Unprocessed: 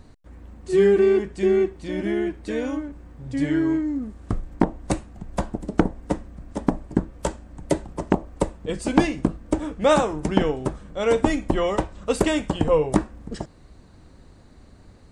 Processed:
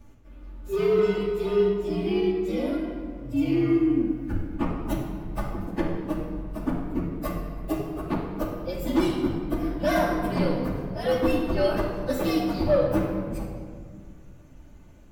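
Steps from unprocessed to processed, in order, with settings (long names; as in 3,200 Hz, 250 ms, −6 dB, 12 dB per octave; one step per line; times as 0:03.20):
partials spread apart or drawn together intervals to 116%
soft clipping −14 dBFS, distortion −18 dB
rectangular room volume 2,700 cubic metres, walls mixed, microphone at 2.5 metres
level −3.5 dB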